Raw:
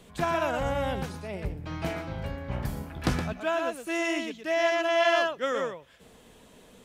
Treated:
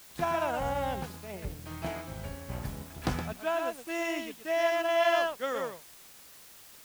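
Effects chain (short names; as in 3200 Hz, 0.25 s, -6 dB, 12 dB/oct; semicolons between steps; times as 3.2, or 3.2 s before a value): dynamic EQ 820 Hz, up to +6 dB, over -41 dBFS, Q 2.5; crossover distortion -50 dBFS; requantised 8-bit, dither triangular; gain -4.5 dB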